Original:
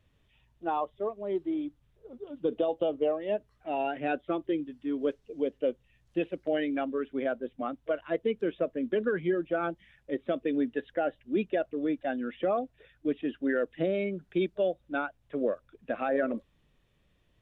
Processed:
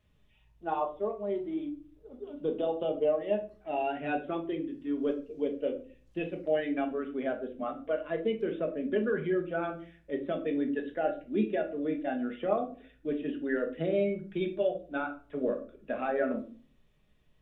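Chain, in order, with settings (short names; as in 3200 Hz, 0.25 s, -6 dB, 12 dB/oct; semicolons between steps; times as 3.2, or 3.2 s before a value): shoebox room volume 300 m³, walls furnished, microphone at 1.4 m; gain -3.5 dB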